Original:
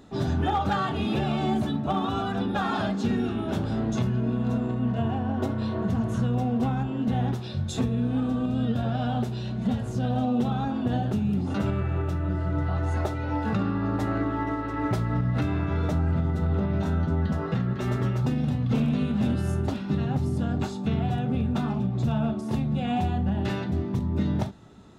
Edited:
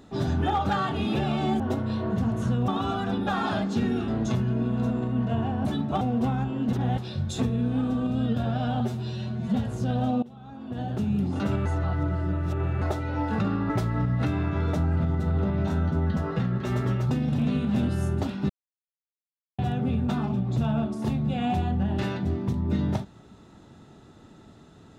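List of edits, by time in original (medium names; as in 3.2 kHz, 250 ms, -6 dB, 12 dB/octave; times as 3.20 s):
1.60–1.96 s: swap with 5.32–6.40 s
3.36–3.75 s: delete
7.12–7.37 s: reverse
9.19–9.68 s: stretch 1.5×
10.37–11.23 s: fade in quadratic, from -21.5 dB
11.80–12.96 s: reverse
13.84–14.85 s: delete
18.54–18.85 s: delete
19.96–21.05 s: mute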